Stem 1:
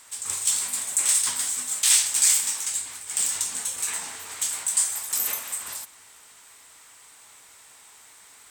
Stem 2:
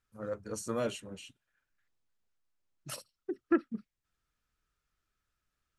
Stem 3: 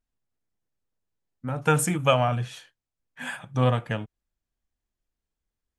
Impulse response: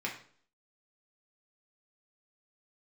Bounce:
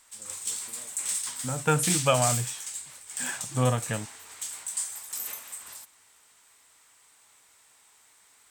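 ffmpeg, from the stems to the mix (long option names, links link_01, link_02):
-filter_complex "[0:a]volume=-9dB[link_01];[1:a]acompressor=threshold=-41dB:ratio=6,volume=-13dB[link_02];[2:a]volume=-2.5dB[link_03];[link_01][link_02][link_03]amix=inputs=3:normalize=0"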